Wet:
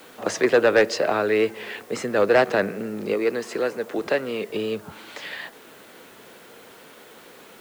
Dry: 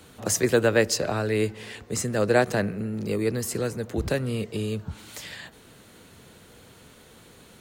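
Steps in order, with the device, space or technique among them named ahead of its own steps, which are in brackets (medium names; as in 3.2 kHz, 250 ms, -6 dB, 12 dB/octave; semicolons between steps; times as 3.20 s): tape answering machine (band-pass 340–3000 Hz; saturation -16.5 dBFS, distortion -14 dB; wow and flutter; white noise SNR 30 dB); 3.14–4.50 s: high-pass 250 Hz 6 dB/octave; trim +7.5 dB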